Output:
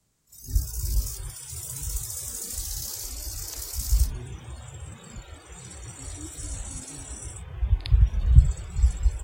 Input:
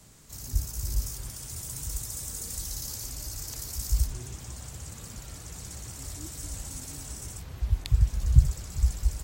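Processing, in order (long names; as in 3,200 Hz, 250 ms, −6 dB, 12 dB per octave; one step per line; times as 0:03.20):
noise reduction from a noise print of the clip's start 20 dB
echo ahead of the sound 53 ms −16.5 dB
level +3 dB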